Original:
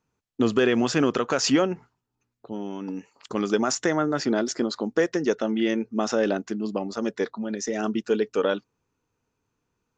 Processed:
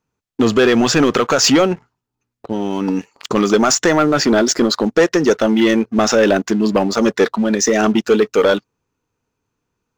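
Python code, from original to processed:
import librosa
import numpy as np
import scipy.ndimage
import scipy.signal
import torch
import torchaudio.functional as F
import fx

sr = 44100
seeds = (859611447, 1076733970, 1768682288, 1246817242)

p1 = fx.dynamic_eq(x, sr, hz=270.0, q=0.74, threshold_db=-33.0, ratio=4.0, max_db=-3)
p2 = fx.rider(p1, sr, range_db=4, speed_s=0.5)
p3 = p1 + (p2 * 10.0 ** (1.5 / 20.0))
y = fx.leveller(p3, sr, passes=2)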